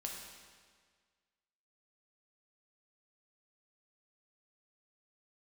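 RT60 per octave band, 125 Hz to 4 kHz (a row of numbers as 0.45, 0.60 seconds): 1.7, 1.7, 1.7, 1.7, 1.7, 1.5 seconds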